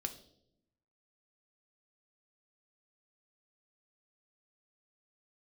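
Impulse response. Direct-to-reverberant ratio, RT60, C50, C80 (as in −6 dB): 6.0 dB, 0.80 s, 13.0 dB, 16.0 dB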